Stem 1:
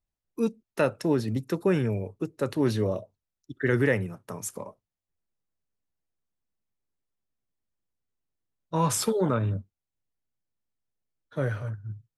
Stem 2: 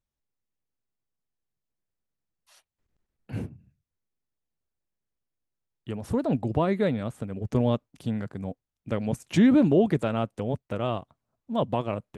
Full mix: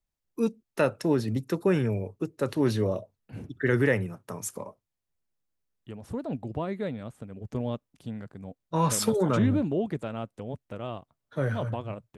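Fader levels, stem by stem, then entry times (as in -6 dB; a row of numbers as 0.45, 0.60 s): 0.0, -7.5 dB; 0.00, 0.00 s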